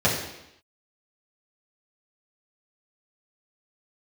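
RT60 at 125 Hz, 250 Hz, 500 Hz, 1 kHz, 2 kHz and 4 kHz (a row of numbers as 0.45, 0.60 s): 0.75, 0.85, 0.80, 0.85, 0.85, 0.85 s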